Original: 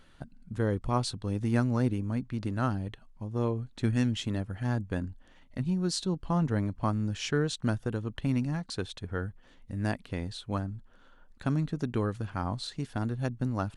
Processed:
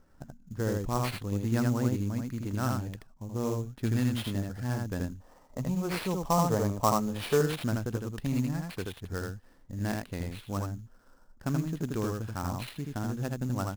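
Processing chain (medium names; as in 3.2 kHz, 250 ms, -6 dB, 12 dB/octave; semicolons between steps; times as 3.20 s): on a send: delay 80 ms -3 dB; on the sum: time-frequency box 5.19–7.41 s, 390–1300 Hz +9 dB; level-controlled noise filter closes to 1.1 kHz, open at -23 dBFS; sample-rate reducer 6.8 kHz, jitter 20%; trim -2.5 dB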